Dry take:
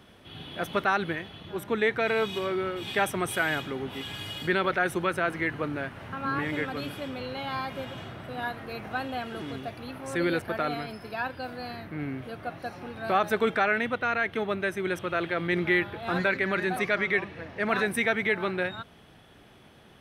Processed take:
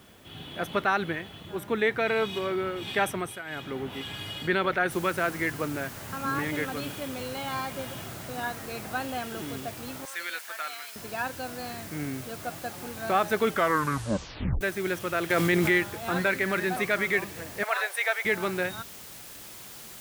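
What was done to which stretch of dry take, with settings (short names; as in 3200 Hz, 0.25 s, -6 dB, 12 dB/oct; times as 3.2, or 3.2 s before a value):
3.1–3.76 dip -14.5 dB, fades 0.32 s
4.91 noise floor step -62 dB -45 dB
10.05–10.96 HPF 1400 Hz
13.47 tape stop 1.14 s
15.3–15.78 fast leveller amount 70%
17.63–18.25 Chebyshev high-pass 540 Hz, order 4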